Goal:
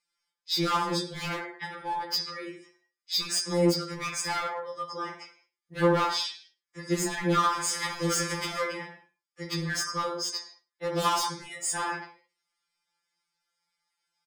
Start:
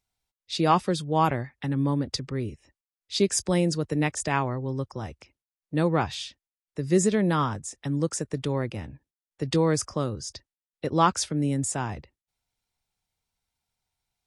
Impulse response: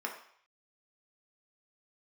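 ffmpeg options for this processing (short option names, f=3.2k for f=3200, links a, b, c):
-filter_complex "[0:a]asettb=1/sr,asplit=3[a][b][c];[a]atrim=end=7.524[d];[b]atrim=start=7.52:end=8.61,asetpts=PTS-STARTPTS,afade=t=in:d=0.004:c=qsin,afade=t=out:st=1.086:d=0.004:c=qsin,aeval=exprs='val(0)+0.5*0.0398*sgn(val(0))':c=same[e];[c]atrim=start=8.606[f];[d][e]acrossfade=d=0.004:c1=hsin:c2=qsin[g];[g][f]acrossfade=d=0.004:c1=qsin:c2=hsin,lowpass=7.2k,tiltshelf=f=1.5k:g=-7.5,aecho=1:1:101:0.0794,alimiter=limit=-15dB:level=0:latency=1:release=438,bandreject=f=60:t=h:w=6,bandreject=f=120:t=h:w=6,bandreject=f=180:t=h:w=6,bandreject=f=240:t=h:w=6,bandreject=f=300:t=h:w=6,bandreject=f=360:t=h:w=6,asettb=1/sr,asplit=3[h][i][j];[h]atrim=end=10.094[k];[i]atrim=start=10.09:end=11.21,asetpts=PTS-STARTPTS,afade=t=in:d=0.004:c=qsin,afade=t=out:st=1.116:d=0.004:c=qsin,equalizer=f=940:w=1.2:g=8[l];[j]atrim=start=11.206[m];[k][l]acrossfade=d=0.004:c1=hsin:c2=qsin[n];[n][m]acrossfade=d=0.004:c1=qsin:c2=hsin,bandreject=f=2.7k:w=6.2[o];[1:a]atrim=start_sample=2205,afade=t=out:st=0.26:d=0.01,atrim=end_sample=11907,asetrate=41454,aresample=44100[p];[o][p]afir=irnorm=-1:irlink=0,volume=26dB,asoftclip=hard,volume=-26dB,afftfilt=real='re*2.83*eq(mod(b,8),0)':imag='im*2.83*eq(mod(b,8),0)':win_size=2048:overlap=0.75,volume=4.5dB"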